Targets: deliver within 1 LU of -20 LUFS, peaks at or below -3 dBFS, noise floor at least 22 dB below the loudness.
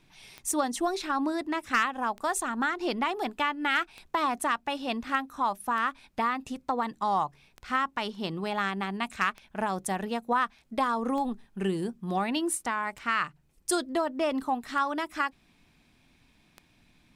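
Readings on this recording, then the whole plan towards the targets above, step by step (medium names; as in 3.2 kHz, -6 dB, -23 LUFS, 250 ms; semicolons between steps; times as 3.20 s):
clicks found 10; loudness -30.0 LUFS; peak level -14.0 dBFS; loudness target -20.0 LUFS
-> de-click; trim +10 dB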